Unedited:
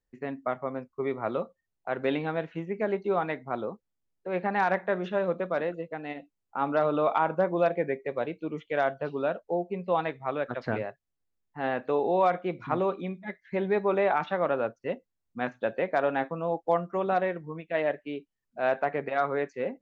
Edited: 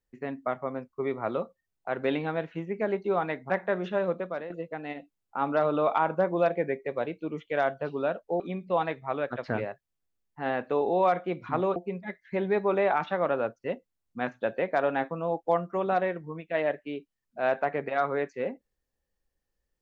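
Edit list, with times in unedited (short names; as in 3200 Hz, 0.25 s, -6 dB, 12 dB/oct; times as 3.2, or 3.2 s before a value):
3.5–4.7 cut
5.28–5.7 fade out, to -10.5 dB
9.6–9.85 swap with 12.94–13.21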